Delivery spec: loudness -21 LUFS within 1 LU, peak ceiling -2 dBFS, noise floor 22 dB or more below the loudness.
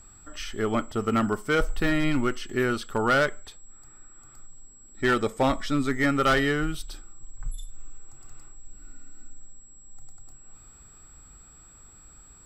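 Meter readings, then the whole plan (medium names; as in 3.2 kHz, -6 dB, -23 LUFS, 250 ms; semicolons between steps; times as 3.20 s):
clipped samples 0.5%; clipping level -16.0 dBFS; steady tone 7.7 kHz; tone level -51 dBFS; loudness -25.5 LUFS; peak level -16.0 dBFS; loudness target -21.0 LUFS
-> clip repair -16 dBFS; band-stop 7.7 kHz, Q 30; trim +4.5 dB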